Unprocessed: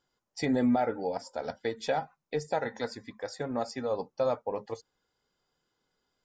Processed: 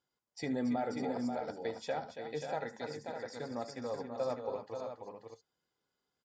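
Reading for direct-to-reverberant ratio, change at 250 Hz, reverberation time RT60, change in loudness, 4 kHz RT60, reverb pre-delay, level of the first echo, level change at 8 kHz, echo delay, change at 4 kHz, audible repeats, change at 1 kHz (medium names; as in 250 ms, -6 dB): no reverb, -6.0 dB, no reverb, -6.5 dB, no reverb, no reverb, -15.5 dB, -6.5 dB, 75 ms, -6.5 dB, 4, -6.0 dB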